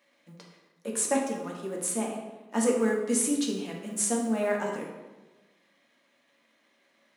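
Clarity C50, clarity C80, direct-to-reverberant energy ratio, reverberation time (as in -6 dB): 3.5 dB, 6.0 dB, -1.5 dB, 1.2 s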